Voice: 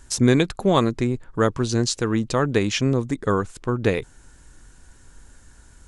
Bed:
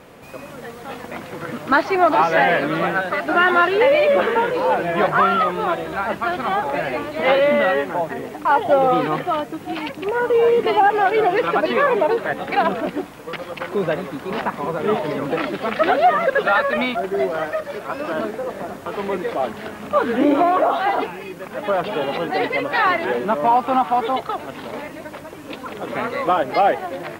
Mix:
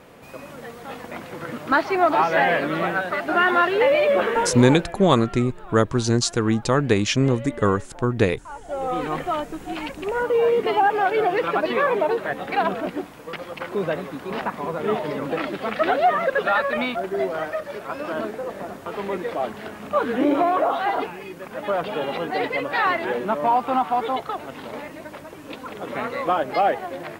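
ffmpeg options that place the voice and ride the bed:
-filter_complex "[0:a]adelay=4350,volume=1.5dB[a];[1:a]volume=15dB,afade=t=out:st=4.41:d=0.58:silence=0.11885,afade=t=in:st=8.63:d=0.59:silence=0.125893[b];[a][b]amix=inputs=2:normalize=0"

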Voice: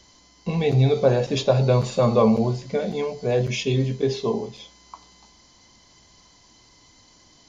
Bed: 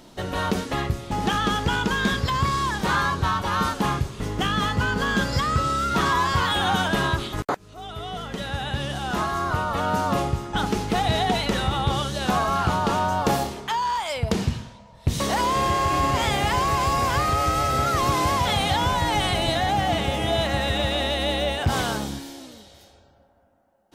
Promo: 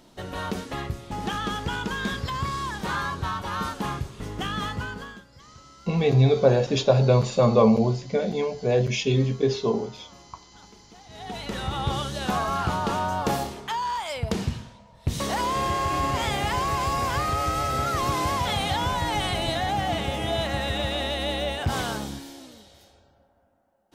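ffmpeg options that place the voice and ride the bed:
-filter_complex "[0:a]adelay=5400,volume=0dB[a];[1:a]volume=18.5dB,afade=t=out:st=4.67:d=0.55:silence=0.0794328,afade=t=in:st=11.09:d=0.77:silence=0.0595662[b];[a][b]amix=inputs=2:normalize=0"

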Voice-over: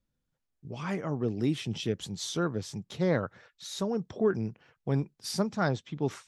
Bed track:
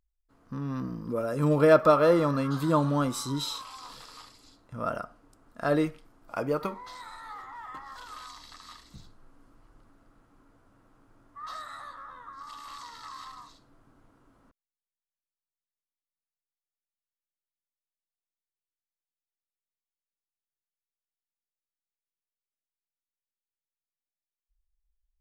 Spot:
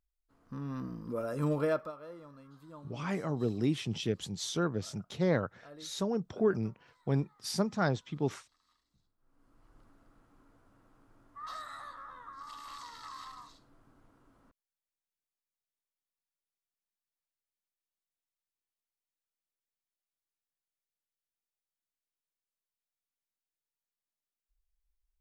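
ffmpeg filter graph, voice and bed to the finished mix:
-filter_complex "[0:a]adelay=2200,volume=-1.5dB[a];[1:a]volume=18dB,afade=t=out:st=1.43:d=0.49:silence=0.0891251,afade=t=in:st=9.18:d=0.62:silence=0.0668344[b];[a][b]amix=inputs=2:normalize=0"

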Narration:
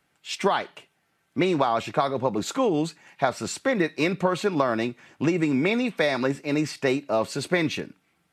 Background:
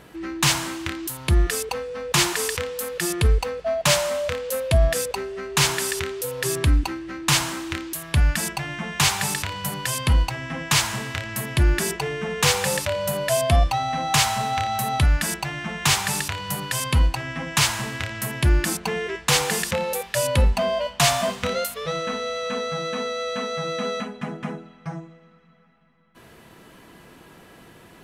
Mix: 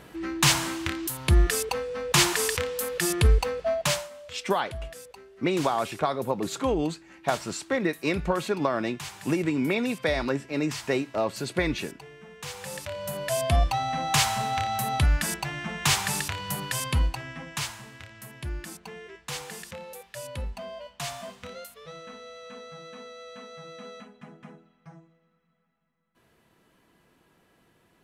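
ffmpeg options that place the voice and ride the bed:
-filter_complex "[0:a]adelay=4050,volume=-3dB[a];[1:a]volume=15dB,afade=t=out:st=3.65:d=0.44:silence=0.11885,afade=t=in:st=12.49:d=1.22:silence=0.158489,afade=t=out:st=16.68:d=1.12:silence=0.237137[b];[a][b]amix=inputs=2:normalize=0"

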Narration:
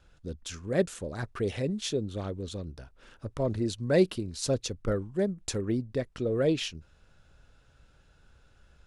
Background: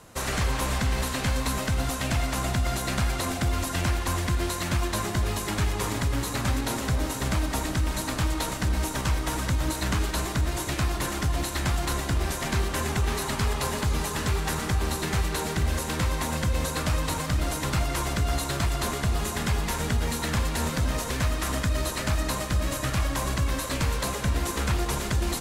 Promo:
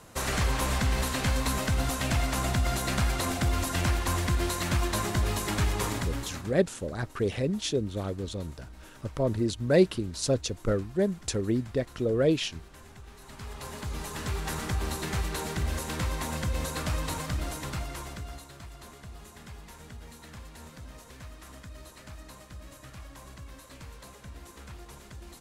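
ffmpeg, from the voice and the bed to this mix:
-filter_complex "[0:a]adelay=5800,volume=2dB[a];[1:a]volume=17.5dB,afade=t=out:st=5.81:d=0.72:silence=0.0794328,afade=t=in:st=13.19:d=1.41:silence=0.11885,afade=t=out:st=17.15:d=1.34:silence=0.177828[b];[a][b]amix=inputs=2:normalize=0"

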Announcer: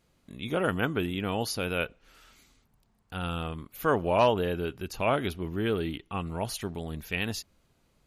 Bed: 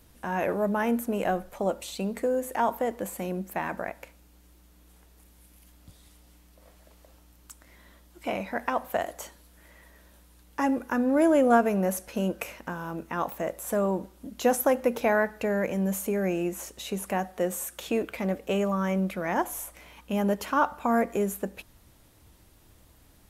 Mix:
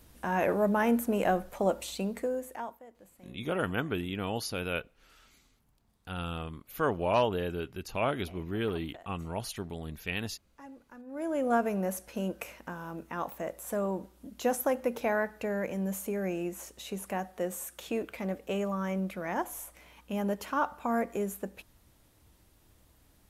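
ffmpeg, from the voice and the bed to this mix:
-filter_complex "[0:a]adelay=2950,volume=-3.5dB[a];[1:a]volume=18dB,afade=t=out:st=1.79:d=1:silence=0.0668344,afade=t=in:st=11.06:d=0.56:silence=0.125893[b];[a][b]amix=inputs=2:normalize=0"

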